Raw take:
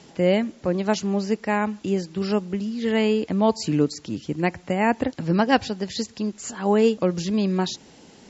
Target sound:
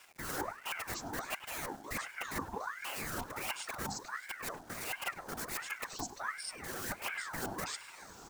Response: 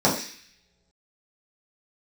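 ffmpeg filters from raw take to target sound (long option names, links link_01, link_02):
-filter_complex "[0:a]bandreject=frequency=60:width_type=h:width=6,bandreject=frequency=120:width_type=h:width=6,bandreject=frequency=180:width_type=h:width=6,bandreject=frequency=240:width_type=h:width=6,bandreject=frequency=300:width_type=h:width=6,bandreject=frequency=360:width_type=h:width=6,bandreject=frequency=420:width_type=h:width=6,aeval=exprs='(mod(7.08*val(0)+1,2)-1)/7.08':channel_layout=same,highshelf=frequency=4800:gain=10.5,bandreject=frequency=4200:width=5,areverse,acompressor=threshold=-34dB:ratio=5,areverse,afftfilt=real='hypot(re,im)*cos(2*PI*random(0))':imag='hypot(re,im)*sin(2*PI*random(1))':win_size=512:overlap=0.75,asplit=2[link_01][link_02];[link_02]adelay=101,lowpass=frequency=1900:poles=1,volume=-11.5dB,asplit=2[link_03][link_04];[link_04]adelay=101,lowpass=frequency=1900:poles=1,volume=0.21,asplit=2[link_05][link_06];[link_06]adelay=101,lowpass=frequency=1900:poles=1,volume=0.21[link_07];[link_01][link_03][link_05][link_07]amix=inputs=4:normalize=0,acrusher=bits=9:mix=0:aa=0.000001,equalizer=frequency=125:width_type=o:width=1:gain=-8,equalizer=frequency=250:width_type=o:width=1:gain=4,equalizer=frequency=1000:width_type=o:width=1:gain=11,equalizer=frequency=2000:width_type=o:width=1:gain=-11,aeval=exprs='val(0)*sin(2*PI*1200*n/s+1200*0.6/1.4*sin(2*PI*1.4*n/s))':channel_layout=same,volume=3.5dB"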